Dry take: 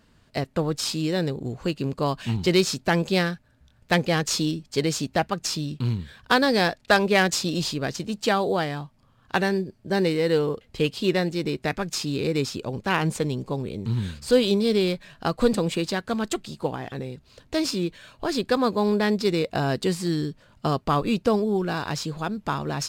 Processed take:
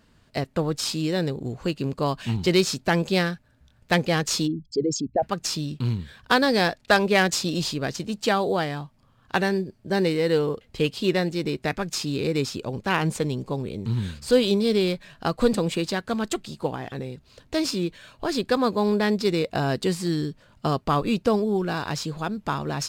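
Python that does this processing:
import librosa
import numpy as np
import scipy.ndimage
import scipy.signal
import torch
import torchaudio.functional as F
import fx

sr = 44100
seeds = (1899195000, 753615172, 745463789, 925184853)

y = fx.envelope_sharpen(x, sr, power=3.0, at=(4.46, 5.22), fade=0.02)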